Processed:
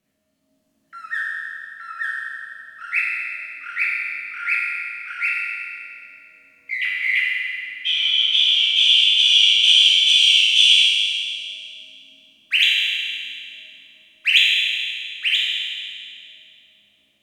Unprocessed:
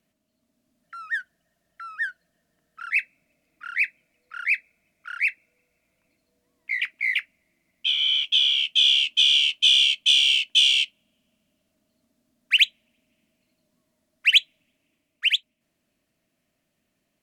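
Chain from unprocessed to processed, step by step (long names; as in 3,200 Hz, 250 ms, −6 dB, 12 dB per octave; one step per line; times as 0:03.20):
convolution reverb RT60 2.4 s, pre-delay 5 ms, DRR −6.5 dB
level −2 dB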